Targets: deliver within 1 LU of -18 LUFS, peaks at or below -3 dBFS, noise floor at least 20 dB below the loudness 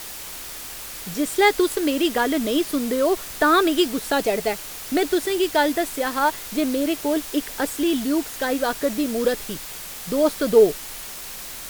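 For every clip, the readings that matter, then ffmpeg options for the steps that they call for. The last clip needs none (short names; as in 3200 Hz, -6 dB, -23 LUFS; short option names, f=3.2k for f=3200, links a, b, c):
noise floor -36 dBFS; noise floor target -42 dBFS; loudness -22.0 LUFS; peak -5.0 dBFS; loudness target -18.0 LUFS
-> -af "afftdn=nr=6:nf=-36"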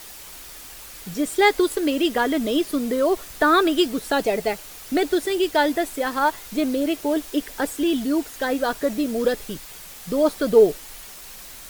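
noise floor -41 dBFS; noise floor target -42 dBFS
-> -af "afftdn=nr=6:nf=-41"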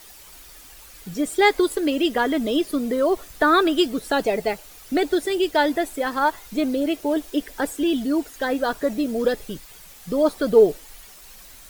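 noise floor -45 dBFS; loudness -22.0 LUFS; peak -5.5 dBFS; loudness target -18.0 LUFS
-> -af "volume=4dB,alimiter=limit=-3dB:level=0:latency=1"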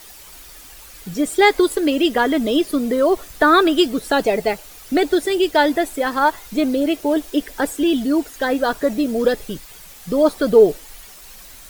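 loudness -18.0 LUFS; peak -3.0 dBFS; noise floor -41 dBFS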